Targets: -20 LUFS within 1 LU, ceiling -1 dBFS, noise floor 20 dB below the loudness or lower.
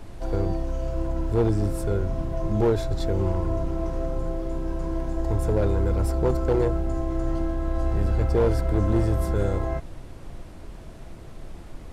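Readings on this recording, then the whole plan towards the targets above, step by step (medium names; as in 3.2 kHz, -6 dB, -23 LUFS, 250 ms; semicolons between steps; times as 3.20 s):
clipped samples 1.2%; clipping level -15.0 dBFS; noise floor -41 dBFS; noise floor target -46 dBFS; loudness -26.0 LUFS; peak level -15.0 dBFS; loudness target -20.0 LUFS
-> clip repair -15 dBFS; noise print and reduce 6 dB; trim +6 dB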